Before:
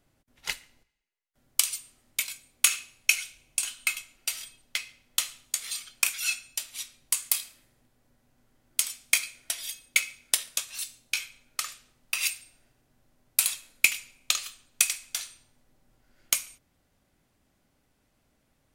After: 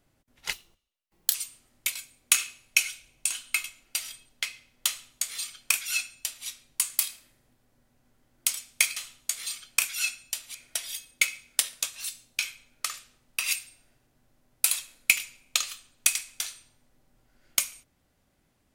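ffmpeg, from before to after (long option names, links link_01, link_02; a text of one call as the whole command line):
ffmpeg -i in.wav -filter_complex "[0:a]asplit=5[link_01][link_02][link_03][link_04][link_05];[link_01]atrim=end=0.534[link_06];[link_02]atrim=start=0.53:end=1.67,asetpts=PTS-STARTPTS,asetrate=61740,aresample=44100[link_07];[link_03]atrim=start=1.666:end=9.292[link_08];[link_04]atrim=start=5.208:end=6.792[link_09];[link_05]atrim=start=9.288[link_10];[link_06][link_07]acrossfade=duration=0.004:curve1=hsin:curve2=hsin[link_11];[link_11][link_08]acrossfade=duration=0.004:curve1=hsin:curve2=hsin[link_12];[link_12][link_09]acrossfade=duration=0.004:curve1=hsin:curve2=hsin[link_13];[link_13][link_10]acrossfade=duration=0.004:curve1=hsin:curve2=hsin" out.wav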